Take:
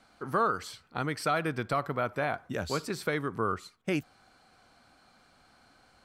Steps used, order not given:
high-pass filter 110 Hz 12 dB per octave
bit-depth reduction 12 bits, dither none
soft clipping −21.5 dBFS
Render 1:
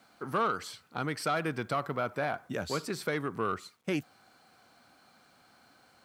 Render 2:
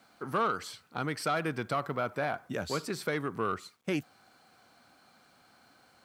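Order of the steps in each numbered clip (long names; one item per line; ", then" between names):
bit-depth reduction, then soft clipping, then high-pass filter
soft clipping, then bit-depth reduction, then high-pass filter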